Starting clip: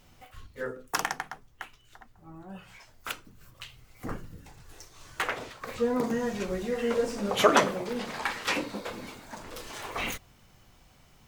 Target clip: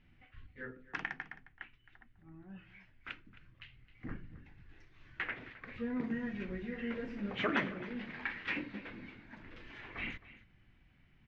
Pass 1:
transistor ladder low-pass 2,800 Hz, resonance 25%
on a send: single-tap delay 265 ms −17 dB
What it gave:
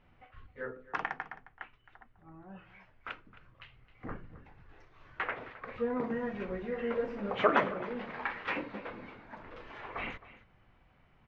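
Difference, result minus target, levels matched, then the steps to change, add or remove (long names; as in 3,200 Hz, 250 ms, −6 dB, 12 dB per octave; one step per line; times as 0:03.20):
1,000 Hz band +5.5 dB
add after transistor ladder low-pass: flat-topped bell 750 Hz −11.5 dB 1.9 octaves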